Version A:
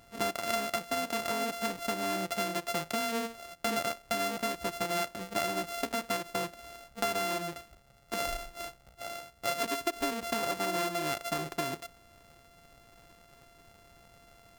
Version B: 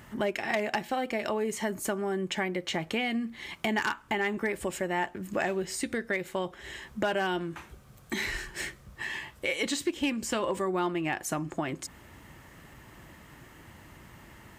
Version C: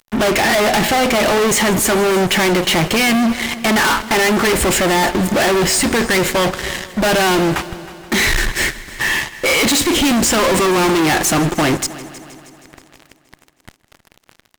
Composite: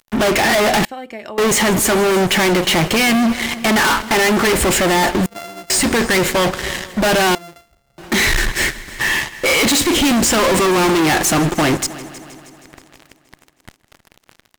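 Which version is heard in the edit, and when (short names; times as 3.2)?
C
0.85–1.38 from B
5.26–5.7 from A
7.35–7.98 from A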